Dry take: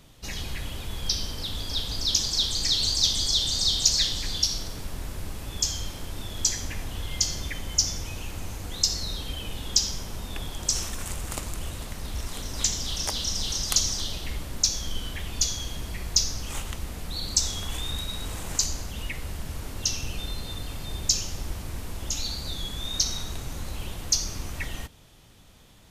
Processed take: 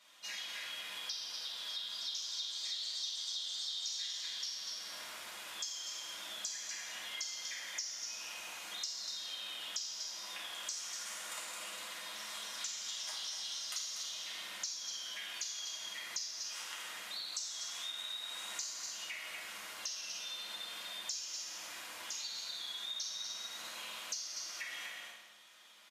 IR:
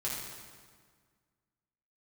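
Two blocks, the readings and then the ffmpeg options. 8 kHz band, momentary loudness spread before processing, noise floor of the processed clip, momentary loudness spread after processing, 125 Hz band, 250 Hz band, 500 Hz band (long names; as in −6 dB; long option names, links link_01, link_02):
−13.5 dB, 14 LU, −48 dBFS, 6 LU, below −40 dB, −26.0 dB, −16.0 dB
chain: -filter_complex "[0:a]highpass=1200,highshelf=frequency=7500:gain=-10.5,aecho=1:1:242:0.398[link_01];[1:a]atrim=start_sample=2205,asetrate=70560,aresample=44100[link_02];[link_01][link_02]afir=irnorm=-1:irlink=0,acompressor=threshold=-42dB:ratio=4,volume=1.5dB"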